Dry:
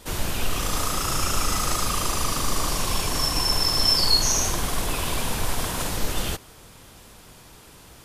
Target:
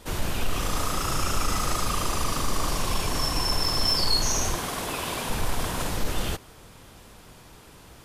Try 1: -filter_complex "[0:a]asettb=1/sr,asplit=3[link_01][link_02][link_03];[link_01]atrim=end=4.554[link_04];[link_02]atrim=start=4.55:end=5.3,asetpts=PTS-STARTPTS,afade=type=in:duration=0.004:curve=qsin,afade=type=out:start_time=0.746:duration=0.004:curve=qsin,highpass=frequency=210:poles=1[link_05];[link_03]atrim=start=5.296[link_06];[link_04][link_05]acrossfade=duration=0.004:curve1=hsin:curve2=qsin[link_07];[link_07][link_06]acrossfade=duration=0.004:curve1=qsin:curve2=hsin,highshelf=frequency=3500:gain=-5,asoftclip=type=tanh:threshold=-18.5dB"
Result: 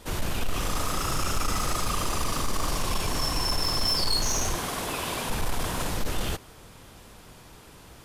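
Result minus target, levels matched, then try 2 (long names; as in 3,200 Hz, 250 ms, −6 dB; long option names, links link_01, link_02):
soft clipping: distortion +8 dB
-filter_complex "[0:a]asettb=1/sr,asplit=3[link_01][link_02][link_03];[link_01]atrim=end=4.554[link_04];[link_02]atrim=start=4.55:end=5.3,asetpts=PTS-STARTPTS,afade=type=in:duration=0.004:curve=qsin,afade=type=out:start_time=0.746:duration=0.004:curve=qsin,highpass=frequency=210:poles=1[link_05];[link_03]atrim=start=5.296[link_06];[link_04][link_05]acrossfade=duration=0.004:curve1=hsin:curve2=qsin[link_07];[link_07][link_06]acrossfade=duration=0.004:curve1=qsin:curve2=hsin,highshelf=frequency=3500:gain=-5,asoftclip=type=tanh:threshold=-12.5dB"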